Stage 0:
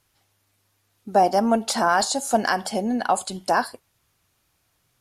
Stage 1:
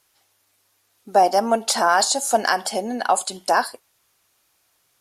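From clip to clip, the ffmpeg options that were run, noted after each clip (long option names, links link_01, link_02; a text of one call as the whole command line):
ffmpeg -i in.wav -af "bass=frequency=250:gain=-13,treble=frequency=4000:gain=3,volume=2.5dB" out.wav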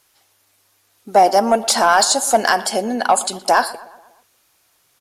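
ffmpeg -i in.wav -filter_complex "[0:a]asoftclip=type=tanh:threshold=-7dB,asplit=2[link_01][link_02];[link_02]adelay=120,lowpass=frequency=2800:poles=1,volume=-17.5dB,asplit=2[link_03][link_04];[link_04]adelay=120,lowpass=frequency=2800:poles=1,volume=0.54,asplit=2[link_05][link_06];[link_06]adelay=120,lowpass=frequency=2800:poles=1,volume=0.54,asplit=2[link_07][link_08];[link_08]adelay=120,lowpass=frequency=2800:poles=1,volume=0.54,asplit=2[link_09][link_10];[link_10]adelay=120,lowpass=frequency=2800:poles=1,volume=0.54[link_11];[link_01][link_03][link_05][link_07][link_09][link_11]amix=inputs=6:normalize=0,volume=5dB" out.wav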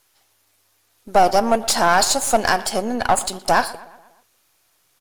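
ffmpeg -i in.wav -af "aeval=exprs='if(lt(val(0),0),0.447*val(0),val(0))':channel_layout=same" out.wav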